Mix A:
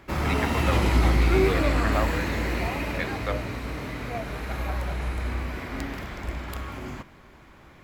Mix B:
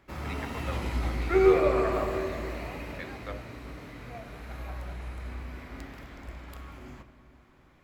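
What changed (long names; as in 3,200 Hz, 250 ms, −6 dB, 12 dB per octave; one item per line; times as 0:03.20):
speech −10.5 dB
first sound −11.5 dB
reverb: on, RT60 2.7 s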